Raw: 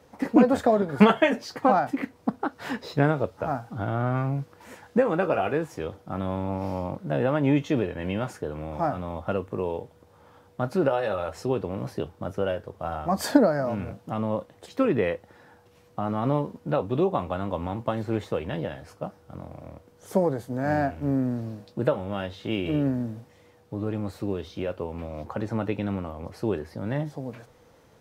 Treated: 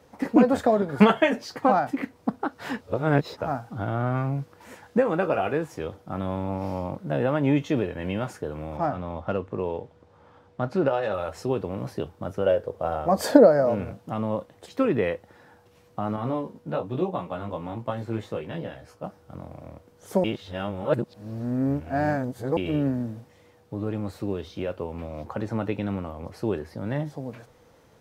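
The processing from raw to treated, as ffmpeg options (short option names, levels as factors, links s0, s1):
-filter_complex "[0:a]asettb=1/sr,asplit=3[s0][s1][s2];[s0]atrim=end=8.774[s3];[s1]atrim=start=8.77:end=11.14,asetpts=PTS-STARTPTS,afade=t=in:d=0.004:c=qsin,afade=t=out:st=2.366:d=0.004:c=qsin,adynamicsmooth=sensitivity=5.5:basefreq=5800[s4];[s2]atrim=start=11.136[s5];[s3][s4]acrossfade=d=0.004:c1=hsin:c2=qsin[s6];[s6][s5]acrossfade=d=0.004:c1=qsin:c2=hsin,asettb=1/sr,asplit=3[s7][s8][s9];[s7]atrim=end=12.464[s10];[s8]atrim=start=12.46:end=13.84,asetpts=PTS-STARTPTS,afade=t=in:d=0.004:c=qsin,afade=t=out:st=1.376:d=0.004:c=qsin,equalizer=f=500:w=1.9:g=10[s11];[s9]atrim=start=13.836[s12];[s10][s11]acrossfade=d=0.004:c1=hsin:c2=qsin[s13];[s13][s12]acrossfade=d=0.004:c1=qsin:c2=hsin,asettb=1/sr,asplit=3[s14][s15][s16];[s14]atrim=end=16.164[s17];[s15]atrim=start=16.16:end=19.04,asetpts=PTS-STARTPTS,afade=t=in:d=0.004:c=qsin,afade=t=out:st=2.876:d=0.004:c=qsin,flanger=delay=16.5:depth=2.1:speed=1.1[s18];[s16]atrim=start=19.036[s19];[s17][s18]acrossfade=d=0.004:c1=hsin:c2=qsin[s20];[s20][s19]acrossfade=d=0.004:c1=qsin:c2=hsin,asplit=5[s21][s22][s23][s24][s25];[s21]atrim=end=2.812[s26];[s22]atrim=start=2.808:end=3.372,asetpts=PTS-STARTPTS,areverse[s27];[s23]atrim=start=3.368:end=20.242[s28];[s24]atrim=start=20.238:end=22.572,asetpts=PTS-STARTPTS,areverse[s29];[s25]atrim=start=22.568[s30];[s26][s27]acrossfade=d=0.004:c1=hsin:c2=hsin[s31];[s31][s28]acrossfade=d=0.004:c1=hsin:c2=hsin[s32];[s32][s29]acrossfade=d=0.004:c1=hsin:c2=hsin[s33];[s33][s30]acrossfade=d=0.004:c1=hsin:c2=hsin"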